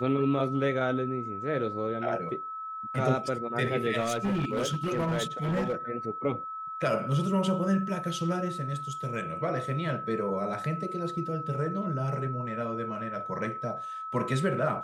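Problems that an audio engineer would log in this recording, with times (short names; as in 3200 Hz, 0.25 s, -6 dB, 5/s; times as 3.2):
tone 1300 Hz -35 dBFS
4–5.74 clipped -24.5 dBFS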